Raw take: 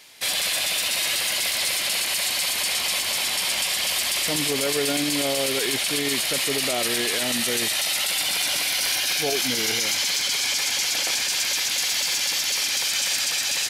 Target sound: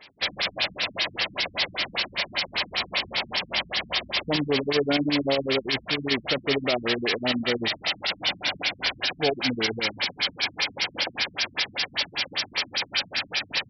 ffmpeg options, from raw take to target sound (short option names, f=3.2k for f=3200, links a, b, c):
-filter_complex "[0:a]asettb=1/sr,asplit=3[a][b][c];[a]atrim=end=5.624[d];[b]atrim=start=5.62:end=6.11,asetpts=PTS-STARTPTS,afade=t=in:d=0.004:c=qsin,afade=t=out:st=0.486:d=0.004:c=qsin,equalizer=f=370:t=o:w=1.3:g=-5.5[e];[c]atrim=start=6.106[f];[d][e]acrossfade=d=0.004:c1=hsin:c2=qsin[g];[g][f]acrossfade=d=0.004:c1=qsin:c2=hsin,afftfilt=real='re*lt(b*sr/1024,240*pow(5900/240,0.5+0.5*sin(2*PI*5.1*pts/sr)))':imag='im*lt(b*sr/1024,240*pow(5900/240,0.5+0.5*sin(2*PI*5.1*pts/sr)))':win_size=1024:overlap=0.75,volume=3dB"